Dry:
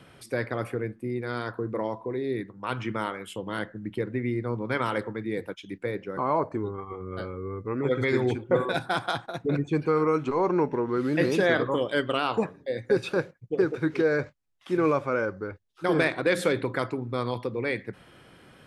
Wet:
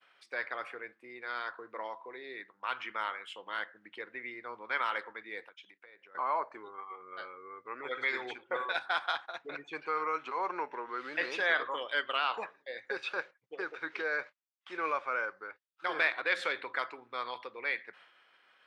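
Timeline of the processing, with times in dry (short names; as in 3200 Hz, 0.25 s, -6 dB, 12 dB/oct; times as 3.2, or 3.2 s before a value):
5.48–6.15 compressor 8:1, threshold -43 dBFS
whole clip: LPF 3700 Hz 12 dB/oct; expander -47 dBFS; HPF 1100 Hz 12 dB/oct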